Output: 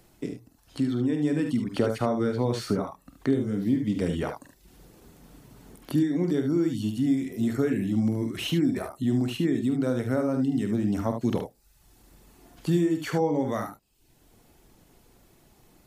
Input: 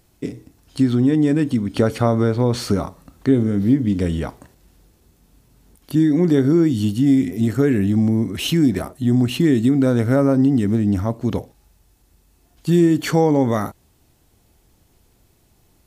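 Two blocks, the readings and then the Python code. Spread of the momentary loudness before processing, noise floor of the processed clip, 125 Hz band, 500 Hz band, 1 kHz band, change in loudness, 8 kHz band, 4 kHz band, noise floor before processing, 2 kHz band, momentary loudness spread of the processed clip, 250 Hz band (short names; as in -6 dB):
9 LU, -62 dBFS, -10.0 dB, -7.5 dB, -7.0 dB, -8.5 dB, -9.0 dB, -7.5 dB, -59 dBFS, -7.0 dB, 8 LU, -8.5 dB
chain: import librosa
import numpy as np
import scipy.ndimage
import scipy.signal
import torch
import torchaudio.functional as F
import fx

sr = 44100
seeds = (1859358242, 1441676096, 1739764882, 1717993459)

y = fx.dereverb_blind(x, sr, rt60_s=0.55)
y = fx.peak_eq(y, sr, hz=76.0, db=-8.0, octaves=1.0)
y = fx.rider(y, sr, range_db=4, speed_s=0.5)
y = fx.room_early_taps(y, sr, ms=(47, 74), db=(-9.5, -8.0))
y = fx.band_squash(y, sr, depth_pct=40)
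y = y * librosa.db_to_amplitude(-7.5)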